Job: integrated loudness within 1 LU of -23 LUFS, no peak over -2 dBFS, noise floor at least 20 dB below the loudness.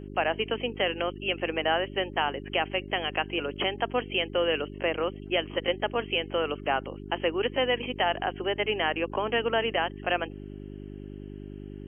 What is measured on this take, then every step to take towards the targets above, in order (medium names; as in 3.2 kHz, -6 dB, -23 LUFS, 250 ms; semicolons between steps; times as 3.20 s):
hum 50 Hz; highest harmonic 400 Hz; hum level -38 dBFS; loudness -28.5 LUFS; peak level -12.5 dBFS; loudness target -23.0 LUFS
-> de-hum 50 Hz, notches 8; trim +5.5 dB